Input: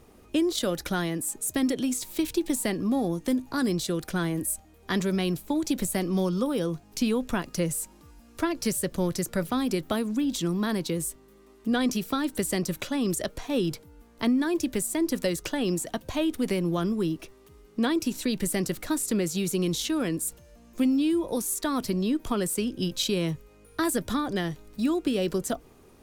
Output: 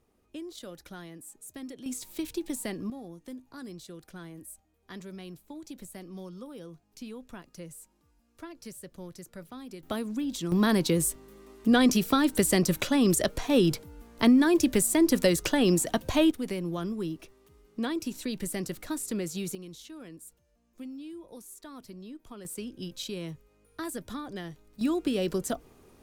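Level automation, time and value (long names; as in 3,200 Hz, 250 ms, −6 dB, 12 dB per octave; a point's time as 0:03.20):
−16 dB
from 0:01.86 −7 dB
from 0:02.90 −16.5 dB
from 0:09.83 −5 dB
from 0:10.52 +4 dB
from 0:16.31 −6 dB
from 0:19.55 −18 dB
from 0:22.45 −10 dB
from 0:24.81 −2 dB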